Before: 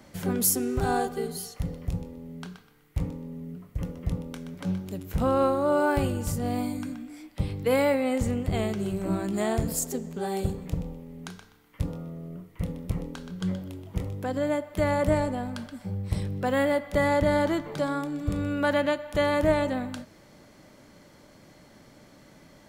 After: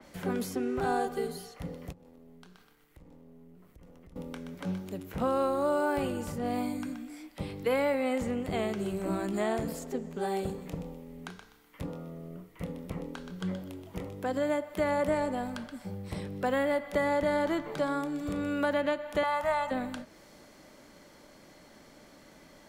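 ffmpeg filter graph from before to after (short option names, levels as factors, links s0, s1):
-filter_complex "[0:a]asettb=1/sr,asplit=3[s0][s1][s2];[s0]atrim=end=1.924[s3];[s1]atrim=start=1.92:end=4.16,asetpts=PTS-STARTPTS,afade=t=in:d=0.004:c=qsin,afade=t=out:st=2.236:d=0.004:c=qsin,aeval=exprs='if(lt(val(0),0),0.447*val(0),val(0))':c=same,acompressor=threshold=0.00398:ratio=4:attack=3.2:release=140:knee=1:detection=peak[s4];[s2]atrim=start=4.156[s5];[s3][s4]acrossfade=d=0.004:c1=hsin:c2=qsin[s6];[s6][s5]acrossfade=d=0.004:c1=qsin:c2=hsin,asettb=1/sr,asplit=3[s7][s8][s9];[s7]atrim=end=19.234[s10];[s8]atrim=start=19.23:end=19.71,asetpts=PTS-STARTPTS,afade=t=in:d=0.004:c=qsin,afade=t=out:st=0.476:d=0.004:c=qsin,lowshelf=f=640:t=q:w=3:g=-12,aecho=1:1:1.5:0.46,atrim=end_sample=21168[s11];[s9]atrim=start=19.706[s12];[s10][s11]acrossfade=d=0.004:c1=hsin:c2=qsin[s13];[s13][s12]acrossfade=d=0.004:c1=qsin:c2=hsin,equalizer=f=110:t=o:w=1.5:g=-9,acrossover=split=97|790|3200[s14][s15][s16][s17];[s14]acompressor=threshold=0.00316:ratio=4[s18];[s15]acompressor=threshold=0.0447:ratio=4[s19];[s16]acompressor=threshold=0.0224:ratio=4[s20];[s17]acompressor=threshold=0.00141:ratio=4[s21];[s18][s19][s20][s21]amix=inputs=4:normalize=0,adynamicequalizer=threshold=0.00282:dfrequency=4000:dqfactor=0.7:tfrequency=4000:tqfactor=0.7:attack=5:release=100:ratio=0.375:range=2.5:mode=boostabove:tftype=highshelf"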